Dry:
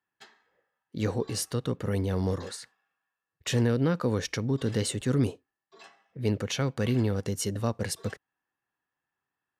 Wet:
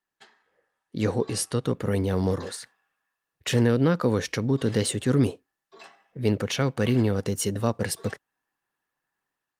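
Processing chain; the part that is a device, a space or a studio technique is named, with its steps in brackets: 1.67–2.46 de-esser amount 55%; video call (HPF 100 Hz 6 dB/oct; AGC gain up to 5 dB; Opus 32 kbps 48000 Hz)

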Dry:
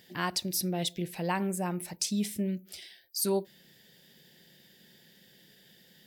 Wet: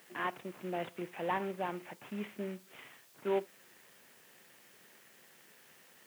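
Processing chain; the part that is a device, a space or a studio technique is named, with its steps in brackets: army field radio (BPF 360–2800 Hz; CVSD 16 kbps; white noise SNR 22 dB); HPF 110 Hz 24 dB/oct

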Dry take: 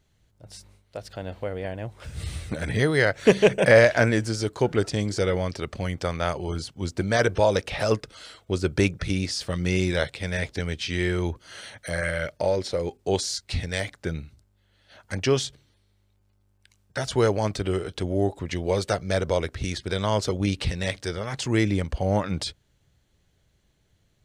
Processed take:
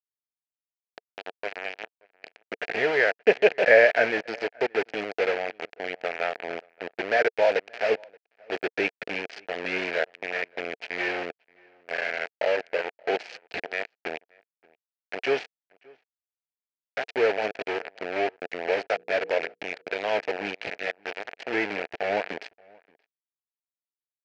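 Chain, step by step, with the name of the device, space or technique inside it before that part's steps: hand-held game console (bit-crush 4-bit; speaker cabinet 410–4000 Hz, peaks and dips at 450 Hz +6 dB, 690 Hz +7 dB, 1100 Hz -10 dB, 1700 Hz +6 dB, 2400 Hz +7 dB, 3600 Hz -8 dB); 18.86–19.54 notches 60/120/180/240/300/360/420/480 Hz; outdoor echo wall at 99 m, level -27 dB; gain -4 dB

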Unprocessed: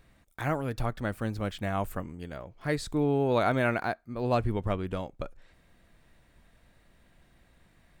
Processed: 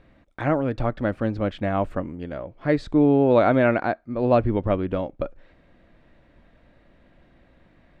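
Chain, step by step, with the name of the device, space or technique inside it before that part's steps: inside a cardboard box (LPF 3200 Hz 12 dB/oct; small resonant body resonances 290/550 Hz, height 7 dB, ringing for 20 ms); gain +4 dB

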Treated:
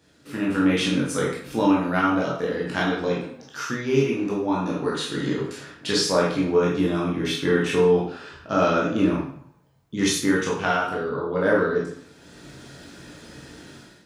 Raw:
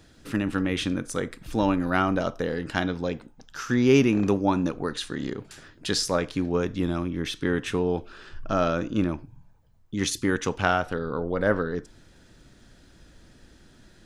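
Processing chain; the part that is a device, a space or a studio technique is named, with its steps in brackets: far laptop microphone (reverb RT60 0.60 s, pre-delay 14 ms, DRR -5 dB; HPF 120 Hz 12 dB/oct; AGC gain up to 14.5 dB); 5.47–6.71 high shelf 6100 Hz -4.5 dB; gain -7 dB

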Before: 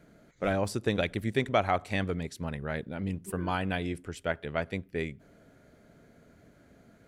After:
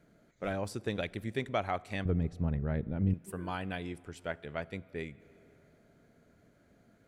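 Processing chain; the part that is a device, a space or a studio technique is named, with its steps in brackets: compressed reverb return (on a send at -13 dB: reverb RT60 2.2 s, pre-delay 3 ms + compressor 4:1, threshold -38 dBFS, peak gain reduction 13 dB); 2.05–3.14 on the sum: tilt -4 dB/oct; gain -6.5 dB

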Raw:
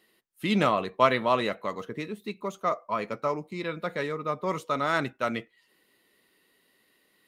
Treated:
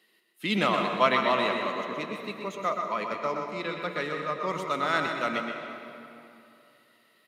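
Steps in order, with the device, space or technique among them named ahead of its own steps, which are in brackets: PA in a hall (HPF 150 Hz 24 dB/oct; bell 3000 Hz +5.5 dB 2.2 oct; echo 0.124 s -7 dB; reverb RT60 2.9 s, pre-delay 0.101 s, DRR 5 dB); gain -3.5 dB

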